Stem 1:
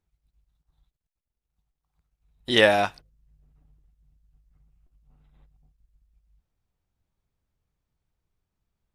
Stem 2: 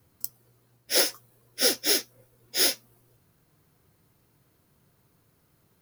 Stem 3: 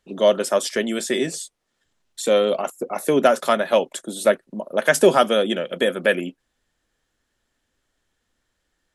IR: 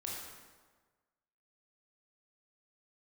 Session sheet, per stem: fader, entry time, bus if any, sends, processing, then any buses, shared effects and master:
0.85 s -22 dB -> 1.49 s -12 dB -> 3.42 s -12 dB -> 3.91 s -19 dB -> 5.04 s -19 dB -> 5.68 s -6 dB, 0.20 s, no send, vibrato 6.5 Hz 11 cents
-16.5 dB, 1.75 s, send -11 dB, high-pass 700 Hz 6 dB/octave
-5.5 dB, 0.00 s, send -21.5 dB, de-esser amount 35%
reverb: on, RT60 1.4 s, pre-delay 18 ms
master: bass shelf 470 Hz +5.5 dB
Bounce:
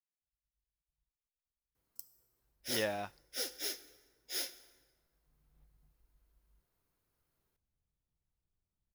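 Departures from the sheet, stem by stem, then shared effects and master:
stem 1 -22.0 dB -> -29.5 dB; stem 3: muted

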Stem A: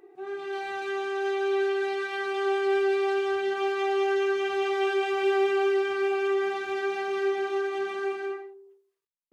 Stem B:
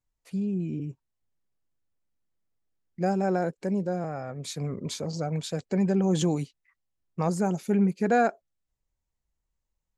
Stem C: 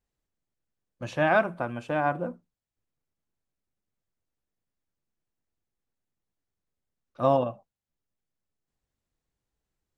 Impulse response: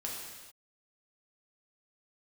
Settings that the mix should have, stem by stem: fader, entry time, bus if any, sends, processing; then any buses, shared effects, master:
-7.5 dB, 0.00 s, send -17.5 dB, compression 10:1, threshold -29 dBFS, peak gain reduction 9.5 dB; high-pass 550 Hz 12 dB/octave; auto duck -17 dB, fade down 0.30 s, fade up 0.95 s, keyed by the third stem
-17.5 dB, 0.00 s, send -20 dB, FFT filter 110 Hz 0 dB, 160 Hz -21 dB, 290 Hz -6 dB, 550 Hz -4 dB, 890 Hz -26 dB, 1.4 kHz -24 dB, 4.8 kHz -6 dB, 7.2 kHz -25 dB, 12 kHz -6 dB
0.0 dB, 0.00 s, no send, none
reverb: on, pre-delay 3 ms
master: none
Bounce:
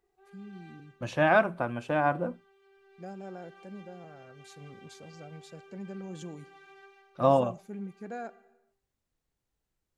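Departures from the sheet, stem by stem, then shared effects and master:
stem A -7.5 dB -> -19.0 dB; stem B: missing FFT filter 110 Hz 0 dB, 160 Hz -21 dB, 290 Hz -6 dB, 550 Hz -4 dB, 890 Hz -26 dB, 1.4 kHz -24 dB, 4.8 kHz -6 dB, 7.2 kHz -25 dB, 12 kHz -6 dB

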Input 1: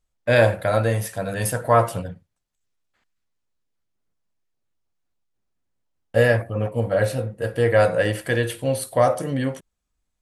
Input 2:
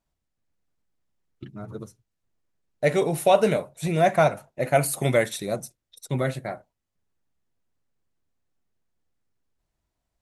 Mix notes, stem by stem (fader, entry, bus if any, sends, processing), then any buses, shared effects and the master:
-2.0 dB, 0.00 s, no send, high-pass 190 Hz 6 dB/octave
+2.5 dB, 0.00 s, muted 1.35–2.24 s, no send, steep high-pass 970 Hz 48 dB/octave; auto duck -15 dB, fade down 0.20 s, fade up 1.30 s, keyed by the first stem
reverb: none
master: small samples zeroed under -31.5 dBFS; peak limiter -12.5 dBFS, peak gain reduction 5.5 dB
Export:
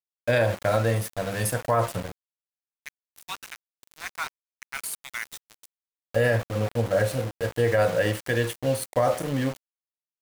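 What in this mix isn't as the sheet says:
stem 1: missing high-pass 190 Hz 6 dB/octave; stem 2 +2.5 dB -> -3.5 dB

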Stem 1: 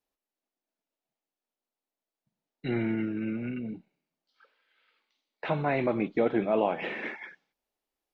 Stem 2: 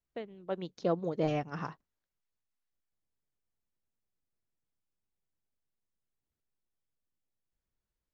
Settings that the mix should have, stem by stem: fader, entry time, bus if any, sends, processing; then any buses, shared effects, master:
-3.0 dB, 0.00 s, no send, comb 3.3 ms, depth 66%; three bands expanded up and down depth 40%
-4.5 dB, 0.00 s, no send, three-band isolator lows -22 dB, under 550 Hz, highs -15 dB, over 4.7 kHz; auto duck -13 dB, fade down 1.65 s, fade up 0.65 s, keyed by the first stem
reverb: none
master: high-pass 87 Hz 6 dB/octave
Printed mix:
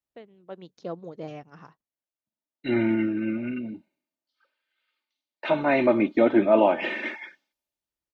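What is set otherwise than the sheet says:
stem 1 -3.0 dB -> +4.5 dB; stem 2: missing three-band isolator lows -22 dB, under 550 Hz, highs -15 dB, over 4.7 kHz

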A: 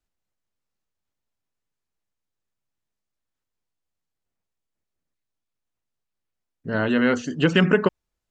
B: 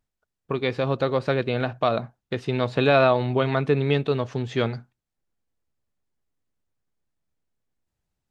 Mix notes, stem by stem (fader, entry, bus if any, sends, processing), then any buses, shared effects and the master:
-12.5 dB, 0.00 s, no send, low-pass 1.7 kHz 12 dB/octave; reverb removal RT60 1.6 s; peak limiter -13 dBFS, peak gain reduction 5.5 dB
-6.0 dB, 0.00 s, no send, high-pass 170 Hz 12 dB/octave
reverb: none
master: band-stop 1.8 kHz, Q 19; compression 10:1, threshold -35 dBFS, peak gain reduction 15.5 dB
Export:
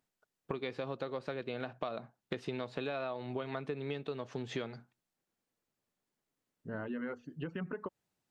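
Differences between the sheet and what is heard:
stem B -6.0 dB -> +1.5 dB; master: missing band-stop 1.8 kHz, Q 19

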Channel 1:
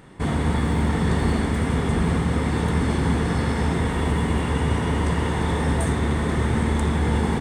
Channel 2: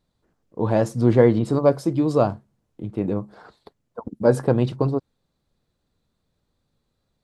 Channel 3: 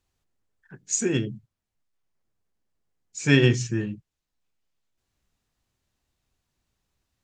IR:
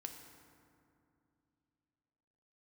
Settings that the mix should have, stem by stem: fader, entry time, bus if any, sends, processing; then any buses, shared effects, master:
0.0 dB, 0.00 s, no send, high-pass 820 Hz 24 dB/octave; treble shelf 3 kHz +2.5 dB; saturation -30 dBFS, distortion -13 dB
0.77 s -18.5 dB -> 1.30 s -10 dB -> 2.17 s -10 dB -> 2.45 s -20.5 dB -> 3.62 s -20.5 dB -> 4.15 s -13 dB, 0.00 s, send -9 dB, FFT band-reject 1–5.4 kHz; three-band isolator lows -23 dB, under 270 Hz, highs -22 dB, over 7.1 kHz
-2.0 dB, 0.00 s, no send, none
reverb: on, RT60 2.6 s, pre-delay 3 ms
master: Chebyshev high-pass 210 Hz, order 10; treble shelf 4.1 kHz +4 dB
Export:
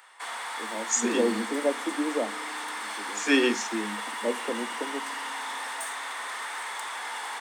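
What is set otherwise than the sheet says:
stem 1: missing treble shelf 3 kHz +2.5 dB; stem 2: missing three-band isolator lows -23 dB, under 270 Hz, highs -22 dB, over 7.1 kHz

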